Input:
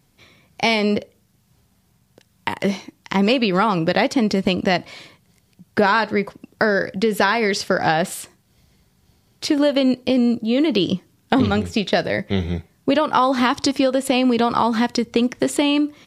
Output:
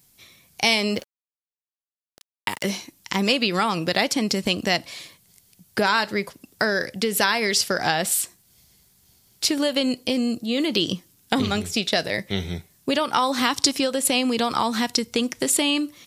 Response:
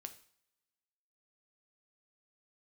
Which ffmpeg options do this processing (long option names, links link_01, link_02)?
-filter_complex "[0:a]crystalizer=i=4.5:c=0,asplit=2[link_01][link_02];[1:a]atrim=start_sample=2205,asetrate=79380,aresample=44100[link_03];[link_02][link_03]afir=irnorm=-1:irlink=0,volume=-5.5dB[link_04];[link_01][link_04]amix=inputs=2:normalize=0,asettb=1/sr,asplit=3[link_05][link_06][link_07];[link_05]atrim=end=0.944[link_08];[link_06]atrim=start=0.94:end=2.68,asetpts=PTS-STARTPTS,afade=type=in:duration=0.004:curve=qsin,afade=type=out:start_time=1.736:duration=0.004:curve=qsin,aeval=exprs='val(0)*gte(abs(val(0)),0.02)':channel_layout=same[link_09];[link_07]atrim=start=2.676[link_10];[link_08][link_09]acrossfade=duration=0.004:curve1=hsin:curve2=qsin[link_11];[link_11][link_10]acrossfade=duration=0.004:curve1=qsin:curve2=hsin,volume=-7.5dB"